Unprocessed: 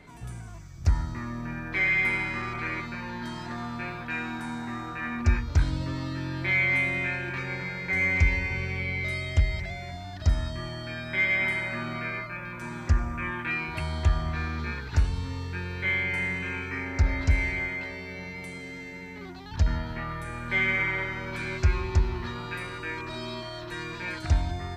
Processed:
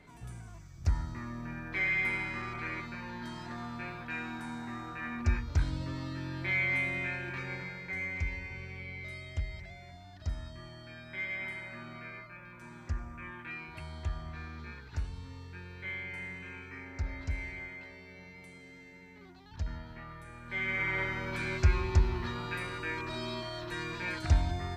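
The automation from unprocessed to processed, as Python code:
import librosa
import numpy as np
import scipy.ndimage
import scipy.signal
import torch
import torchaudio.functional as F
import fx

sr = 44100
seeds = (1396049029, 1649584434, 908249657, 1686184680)

y = fx.gain(x, sr, db=fx.line((7.54, -6.0), (8.1, -12.5), (20.43, -12.5), (21.02, -2.0)))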